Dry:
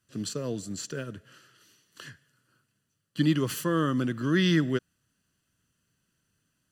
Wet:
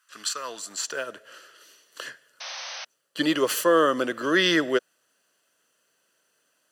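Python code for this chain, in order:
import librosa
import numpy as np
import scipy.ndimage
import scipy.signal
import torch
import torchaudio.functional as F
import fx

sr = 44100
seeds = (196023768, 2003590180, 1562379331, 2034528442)

y = fx.filter_sweep_highpass(x, sr, from_hz=1200.0, to_hz=540.0, start_s=0.37, end_s=1.39, q=2.1)
y = fx.spec_paint(y, sr, seeds[0], shape='noise', start_s=2.4, length_s=0.45, low_hz=500.0, high_hz=6300.0, level_db=-44.0)
y = y * 10.0 ** (7.5 / 20.0)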